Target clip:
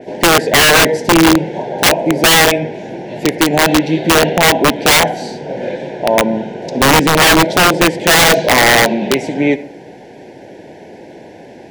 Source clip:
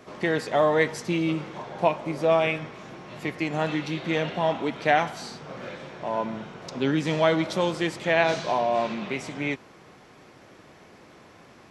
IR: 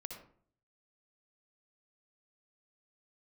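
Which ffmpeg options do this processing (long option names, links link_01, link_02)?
-filter_complex "[0:a]asuperstop=centerf=1200:order=8:qfactor=2.1,equalizer=frequency=440:width=0.41:gain=11.5,asplit=2[link_01][link_02];[1:a]atrim=start_sample=2205[link_03];[link_02][link_03]afir=irnorm=-1:irlink=0,volume=-7dB[link_04];[link_01][link_04]amix=inputs=2:normalize=0,aeval=exprs='(mod(2.51*val(0)+1,2)-1)/2.51':channel_layout=same,adynamicequalizer=threshold=0.0447:dfrequency=4600:dqfactor=0.7:tfrequency=4600:tqfactor=0.7:attack=5:release=100:ratio=0.375:range=2:mode=cutabove:tftype=highshelf,volume=5dB"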